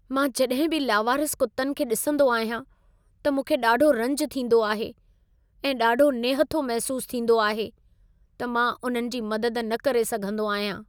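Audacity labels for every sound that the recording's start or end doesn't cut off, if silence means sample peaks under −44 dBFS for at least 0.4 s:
3.250000	4.920000	sound
5.640000	7.700000	sound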